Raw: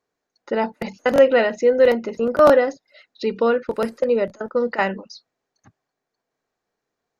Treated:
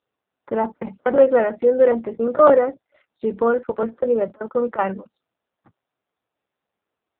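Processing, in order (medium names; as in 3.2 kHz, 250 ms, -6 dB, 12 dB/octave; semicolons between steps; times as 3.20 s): resonant high shelf 1.8 kHz -8 dB, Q 1.5; AMR-NB 5.9 kbps 8 kHz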